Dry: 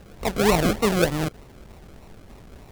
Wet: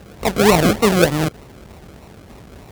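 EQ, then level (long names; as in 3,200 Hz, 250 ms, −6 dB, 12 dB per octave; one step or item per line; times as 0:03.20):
high-pass filter 58 Hz
+6.5 dB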